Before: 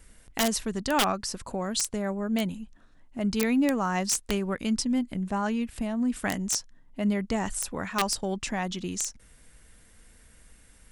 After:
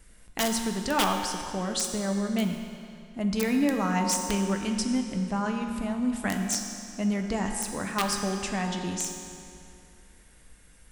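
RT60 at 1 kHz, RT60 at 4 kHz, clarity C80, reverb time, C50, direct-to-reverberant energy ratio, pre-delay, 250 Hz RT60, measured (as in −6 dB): 2.5 s, 2.2 s, 5.0 dB, 2.5 s, 4.0 dB, 2.5 dB, 6 ms, 2.5 s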